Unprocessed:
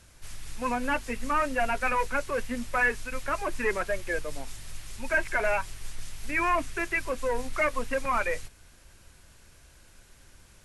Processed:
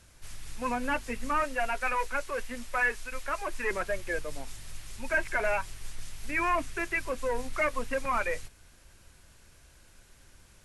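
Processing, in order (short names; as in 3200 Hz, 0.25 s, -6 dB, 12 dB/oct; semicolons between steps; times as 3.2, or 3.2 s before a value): 1.44–3.71 bell 120 Hz -11 dB 2.5 oct; gain -2 dB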